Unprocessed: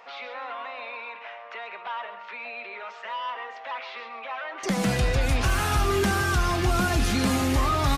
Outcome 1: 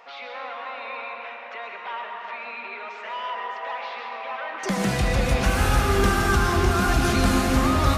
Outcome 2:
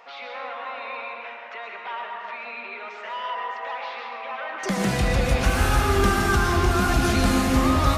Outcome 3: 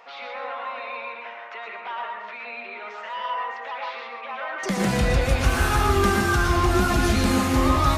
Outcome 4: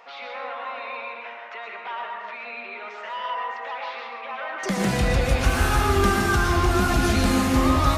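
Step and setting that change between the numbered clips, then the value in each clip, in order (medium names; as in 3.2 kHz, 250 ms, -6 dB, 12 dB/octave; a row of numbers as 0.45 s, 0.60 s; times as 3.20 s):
plate-style reverb, RT60: 5 s, 2.4 s, 0.51 s, 1.1 s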